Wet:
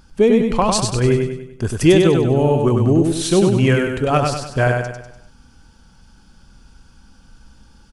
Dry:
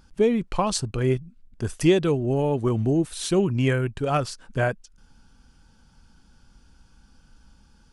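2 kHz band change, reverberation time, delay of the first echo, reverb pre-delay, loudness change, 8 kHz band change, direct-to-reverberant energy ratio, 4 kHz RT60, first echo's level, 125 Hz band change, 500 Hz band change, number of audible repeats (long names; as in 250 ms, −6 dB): +8.0 dB, no reverb audible, 98 ms, no reverb audible, +7.5 dB, +8.0 dB, no reverb audible, no reverb audible, −4.0 dB, +7.5 dB, +8.0 dB, 5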